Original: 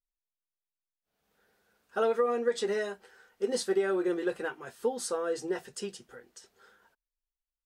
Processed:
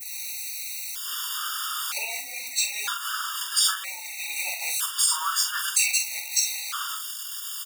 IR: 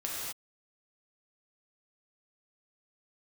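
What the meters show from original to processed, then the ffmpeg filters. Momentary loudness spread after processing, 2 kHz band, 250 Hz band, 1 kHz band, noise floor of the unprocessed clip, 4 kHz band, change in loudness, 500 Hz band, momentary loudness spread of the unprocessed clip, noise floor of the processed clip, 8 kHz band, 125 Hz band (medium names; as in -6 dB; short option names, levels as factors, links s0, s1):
10 LU, +10.5 dB, under -30 dB, +6.0 dB, under -85 dBFS, +19.0 dB, +6.0 dB, -24.0 dB, 13 LU, -37 dBFS, +20.5 dB, under -30 dB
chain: -filter_complex "[0:a]aeval=exprs='val(0)+0.5*0.00891*sgn(val(0))':c=same,flanger=delay=16.5:depth=5.7:speed=0.31,asplit=2[s0][s1];[s1]acrusher=bits=6:mix=0:aa=0.000001,volume=0.562[s2];[s0][s2]amix=inputs=2:normalize=0,adynamicequalizer=threshold=0.00224:dfrequency=4600:dqfactor=0.77:tfrequency=4600:tqfactor=0.77:attack=5:release=100:ratio=0.375:range=2:mode=cutabove:tftype=bell,flanger=delay=0.2:depth=9.8:regen=57:speed=1.2:shape=triangular,acompressor=threshold=0.0158:ratio=5,afreqshift=-220,highpass=f=1400:w=0.5412,highpass=f=1400:w=1.3066,equalizer=f=1800:w=3.7:g=-11.5,asplit=2[s3][s4];[s4]adelay=45,volume=0.447[s5];[s3][s5]amix=inputs=2:normalize=0,alimiter=level_in=59.6:limit=0.891:release=50:level=0:latency=1,afftfilt=real='re*gt(sin(2*PI*0.52*pts/sr)*(1-2*mod(floor(b*sr/1024/930),2)),0)':imag='im*gt(sin(2*PI*0.52*pts/sr)*(1-2*mod(floor(b*sr/1024/930),2)),0)':win_size=1024:overlap=0.75,volume=0.531"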